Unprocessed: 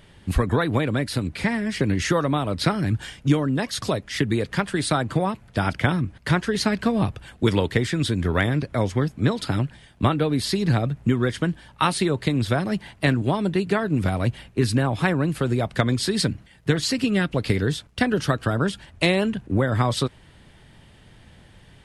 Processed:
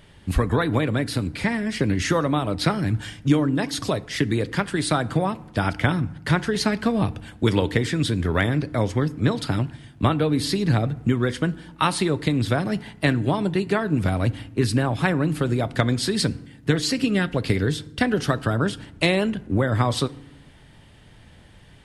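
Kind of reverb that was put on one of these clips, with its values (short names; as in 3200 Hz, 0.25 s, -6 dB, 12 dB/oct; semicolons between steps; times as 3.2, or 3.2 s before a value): FDN reverb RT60 0.83 s, low-frequency decay 1.6×, high-frequency decay 0.6×, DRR 16.5 dB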